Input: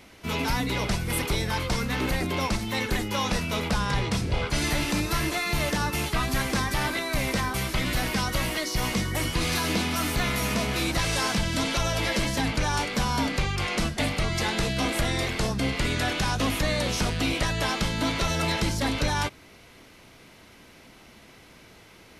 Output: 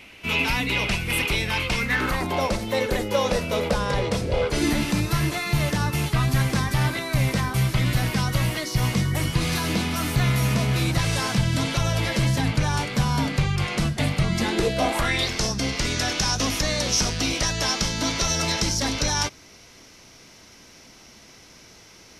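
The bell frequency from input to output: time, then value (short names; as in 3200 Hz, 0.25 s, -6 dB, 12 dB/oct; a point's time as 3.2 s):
bell +13.5 dB 0.59 oct
1.77 s 2600 Hz
2.51 s 530 Hz
4.46 s 530 Hz
4.99 s 130 Hz
14.18 s 130 Hz
15 s 1000 Hz
15.3 s 5700 Hz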